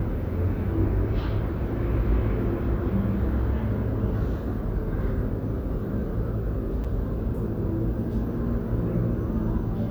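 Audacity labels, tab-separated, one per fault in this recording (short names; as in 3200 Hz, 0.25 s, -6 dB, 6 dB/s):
6.840000	6.850000	gap 5.9 ms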